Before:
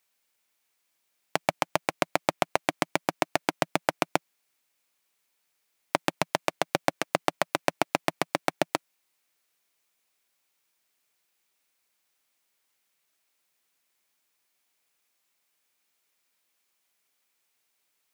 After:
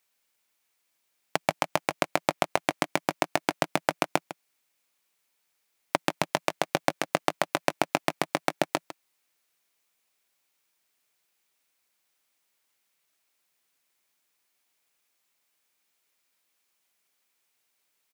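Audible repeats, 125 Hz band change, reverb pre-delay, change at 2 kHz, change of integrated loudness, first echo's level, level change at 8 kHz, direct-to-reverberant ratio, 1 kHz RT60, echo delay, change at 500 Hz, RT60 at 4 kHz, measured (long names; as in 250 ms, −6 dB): 1, 0.0 dB, no reverb audible, 0.0 dB, 0.0 dB, −14.0 dB, 0.0 dB, no reverb audible, no reverb audible, 153 ms, 0.0 dB, no reverb audible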